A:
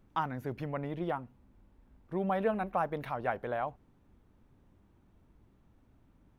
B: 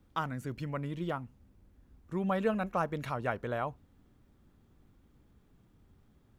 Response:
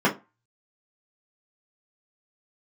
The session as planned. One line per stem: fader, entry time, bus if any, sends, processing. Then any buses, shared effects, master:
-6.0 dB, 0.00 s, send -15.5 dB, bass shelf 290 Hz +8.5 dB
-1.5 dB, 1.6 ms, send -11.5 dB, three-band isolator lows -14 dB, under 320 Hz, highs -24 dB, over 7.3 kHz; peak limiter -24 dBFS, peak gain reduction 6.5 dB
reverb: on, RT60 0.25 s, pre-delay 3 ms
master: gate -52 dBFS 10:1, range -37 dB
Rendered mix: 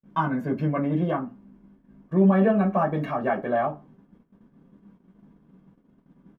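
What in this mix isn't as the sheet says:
stem B -1.5 dB -> -10.0 dB; reverb return +8.0 dB

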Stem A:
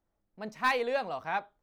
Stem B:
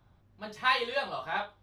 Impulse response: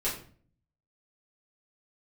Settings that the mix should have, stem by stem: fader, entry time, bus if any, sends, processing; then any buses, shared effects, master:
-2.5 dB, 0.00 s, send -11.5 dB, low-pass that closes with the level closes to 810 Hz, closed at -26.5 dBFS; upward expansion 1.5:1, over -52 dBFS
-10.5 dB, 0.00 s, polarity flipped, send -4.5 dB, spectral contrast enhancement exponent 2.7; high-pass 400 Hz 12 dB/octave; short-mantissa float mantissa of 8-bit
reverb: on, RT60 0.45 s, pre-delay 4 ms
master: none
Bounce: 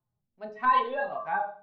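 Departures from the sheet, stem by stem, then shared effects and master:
stem B -10.5 dB -> -2.0 dB; master: extra distance through air 79 m

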